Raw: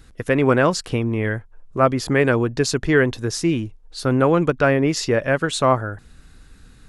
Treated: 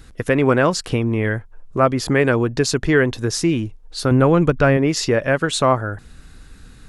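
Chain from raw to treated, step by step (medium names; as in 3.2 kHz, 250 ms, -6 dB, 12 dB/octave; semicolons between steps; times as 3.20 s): 4.11–4.77 s: bass shelf 130 Hz +11.5 dB; in parallel at -0.5 dB: compression, threshold -23 dBFS, peak gain reduction 12.5 dB; on the sum: trim -1.5 dB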